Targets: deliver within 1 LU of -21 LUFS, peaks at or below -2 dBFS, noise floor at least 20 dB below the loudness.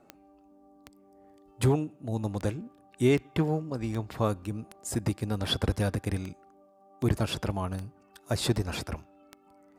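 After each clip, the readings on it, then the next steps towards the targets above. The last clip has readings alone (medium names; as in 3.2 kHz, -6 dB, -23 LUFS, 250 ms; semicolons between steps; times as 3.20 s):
clicks found 13; loudness -30.5 LUFS; peak level -12.5 dBFS; loudness target -21.0 LUFS
-> de-click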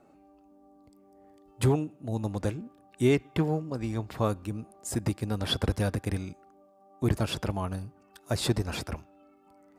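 clicks found 0; loudness -30.5 LUFS; peak level -12.5 dBFS; loudness target -21.0 LUFS
-> trim +9.5 dB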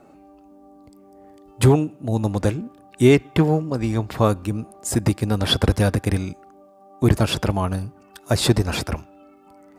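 loudness -21.0 LUFS; peak level -3.0 dBFS; noise floor -51 dBFS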